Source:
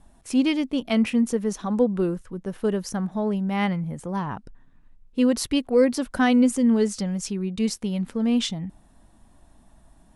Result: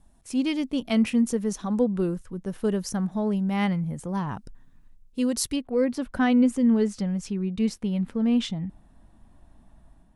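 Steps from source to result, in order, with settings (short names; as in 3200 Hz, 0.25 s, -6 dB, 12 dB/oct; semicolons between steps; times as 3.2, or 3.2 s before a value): tone controls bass +4 dB, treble +4 dB, from 4.27 s treble +10 dB, from 5.55 s treble -7 dB; AGC gain up to 5.5 dB; gain -8 dB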